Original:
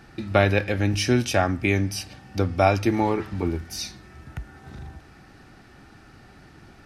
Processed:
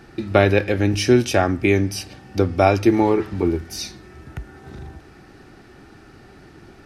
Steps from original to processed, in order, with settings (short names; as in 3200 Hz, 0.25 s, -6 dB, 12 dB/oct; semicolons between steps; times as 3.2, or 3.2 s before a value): bell 380 Hz +7 dB 0.73 oct; gain +2 dB